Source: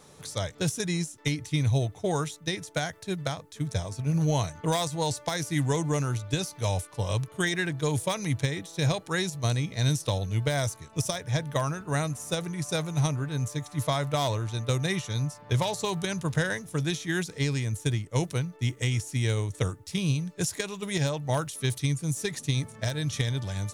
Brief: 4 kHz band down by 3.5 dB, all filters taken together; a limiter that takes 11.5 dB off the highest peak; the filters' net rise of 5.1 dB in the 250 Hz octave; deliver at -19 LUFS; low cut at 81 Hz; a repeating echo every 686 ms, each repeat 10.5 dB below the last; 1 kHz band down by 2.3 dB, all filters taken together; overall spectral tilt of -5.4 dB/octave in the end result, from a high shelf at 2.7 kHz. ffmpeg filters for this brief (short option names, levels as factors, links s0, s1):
-af "highpass=81,equalizer=f=250:t=o:g=9,equalizer=f=1000:t=o:g=-4,highshelf=f=2700:g=5,equalizer=f=4000:t=o:g=-8,alimiter=limit=0.0891:level=0:latency=1,aecho=1:1:686|1372|2058:0.299|0.0896|0.0269,volume=3.98"